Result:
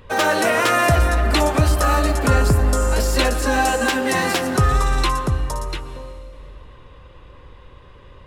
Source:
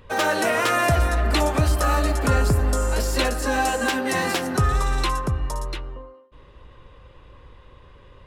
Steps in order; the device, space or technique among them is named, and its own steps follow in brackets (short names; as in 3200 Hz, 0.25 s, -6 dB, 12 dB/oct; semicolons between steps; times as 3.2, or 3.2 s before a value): compressed reverb return (on a send at -11 dB: reverb RT60 2.3 s, pre-delay 0.114 s + compressor, threshold -23 dBFS, peak gain reduction 9.5 dB); on the sum: gain +3.5 dB